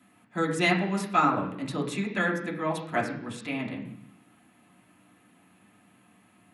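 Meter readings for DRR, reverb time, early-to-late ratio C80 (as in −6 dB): −3.0 dB, 0.70 s, 10.5 dB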